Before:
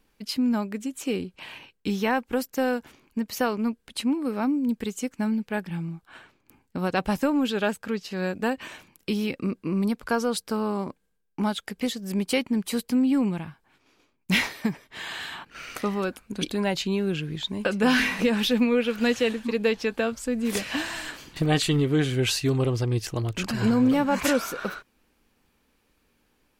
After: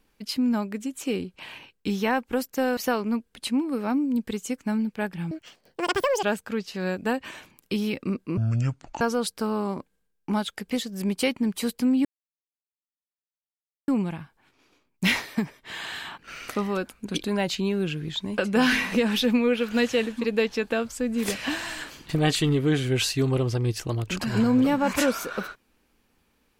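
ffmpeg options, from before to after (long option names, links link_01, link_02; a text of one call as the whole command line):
ffmpeg -i in.wav -filter_complex "[0:a]asplit=7[link_01][link_02][link_03][link_04][link_05][link_06][link_07];[link_01]atrim=end=2.772[link_08];[link_02]atrim=start=3.298:end=5.844[link_09];[link_03]atrim=start=5.84:end=7.6,asetpts=PTS-STARTPTS,asetrate=84231,aresample=44100[link_10];[link_04]atrim=start=7.596:end=9.744[link_11];[link_05]atrim=start=9.74:end=10.11,asetpts=PTS-STARTPTS,asetrate=25578,aresample=44100[link_12];[link_06]atrim=start=10.106:end=13.15,asetpts=PTS-STARTPTS,afade=type=out:start_time=3.04:duration=0.004:curve=hsin,apad=pad_dur=1.83[link_13];[link_07]atrim=start=13.15,asetpts=PTS-STARTPTS,afade=type=in:duration=0.004:curve=hsin[link_14];[link_08][link_09]acrossfade=duration=0.004:curve1=hsin:curve2=hsin[link_15];[link_15][link_10]acrossfade=duration=0.004:curve1=hsin:curve2=hsin[link_16];[link_16][link_11]acrossfade=duration=0.004:curve1=hsin:curve2=hsin[link_17];[link_17][link_12]acrossfade=duration=0.004:curve1=hsin:curve2=hsin[link_18];[link_13][link_14]concat=n=2:v=0:a=1[link_19];[link_18][link_19]acrossfade=duration=0.004:curve1=hsin:curve2=hsin" out.wav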